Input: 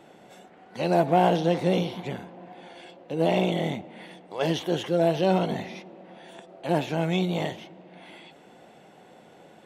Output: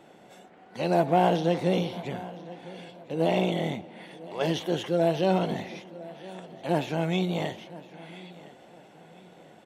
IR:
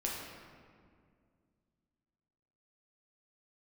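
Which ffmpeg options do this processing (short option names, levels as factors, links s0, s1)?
-af "aecho=1:1:1011|2022|3033:0.112|0.0381|0.013,volume=0.841"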